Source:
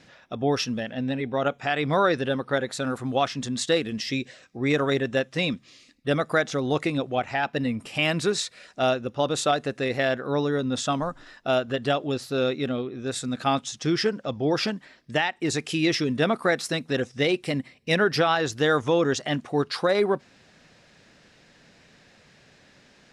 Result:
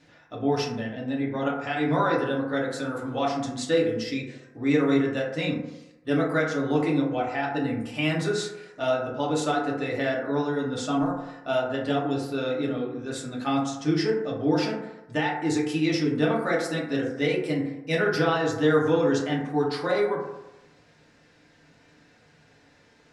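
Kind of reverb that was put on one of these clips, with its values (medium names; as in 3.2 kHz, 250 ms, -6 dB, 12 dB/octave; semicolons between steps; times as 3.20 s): FDN reverb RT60 0.96 s, low-frequency decay 0.85×, high-frequency decay 0.3×, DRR -4.5 dB; trim -8 dB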